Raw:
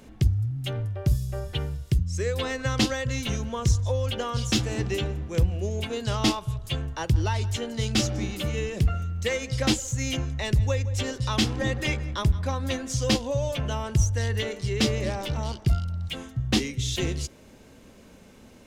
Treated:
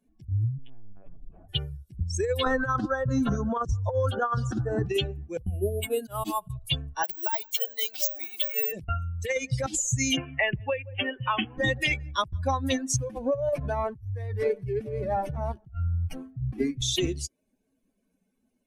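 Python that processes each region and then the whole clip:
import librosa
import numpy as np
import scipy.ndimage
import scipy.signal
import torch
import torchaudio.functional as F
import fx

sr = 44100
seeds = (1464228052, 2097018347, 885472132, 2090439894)

y = fx.chain(x, sr, fx.low_shelf(hz=100.0, db=5.0),
    fx.tube_stage(drive_db=37.0, bias=0.3),
    fx.lpc_vocoder(seeds[0], excitation='pitch_kept', order=10), at=(0.58, 1.49))
y = fx.chain(y, sr, fx.lowpass(hz=10000.0, slope=12),
    fx.high_shelf_res(hz=1800.0, db=-8.0, q=3.0),
    fx.band_squash(depth_pct=100), at=(2.44, 4.86))
y = fx.chain(y, sr, fx.high_shelf(hz=4400.0, db=-3.0),
    fx.auto_swell(attack_ms=119.0),
    fx.resample_bad(factor=4, down='filtered', up='hold'), at=(5.42, 6.5))
y = fx.chain(y, sr, fx.median_filter(points=3),
    fx.highpass(hz=510.0, slope=12),
    fx.resample_bad(factor=2, down='filtered', up='zero_stuff'), at=(7.03, 8.72))
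y = fx.chain(y, sr, fx.steep_lowpass(hz=3200.0, slope=96),
    fx.low_shelf(hz=240.0, db=-10.5),
    fx.band_squash(depth_pct=100), at=(10.17, 11.58))
y = fx.chain(y, sr, fx.peak_eq(hz=5500.0, db=-6.5, octaves=1.7),
    fx.over_compress(threshold_db=-29.0, ratio=-1.0),
    fx.running_max(window=9), at=(12.96, 16.82))
y = fx.bin_expand(y, sr, power=2.0)
y = fx.over_compress(y, sr, threshold_db=-32.0, ratio=-0.5)
y = F.gain(torch.from_numpy(y), 7.0).numpy()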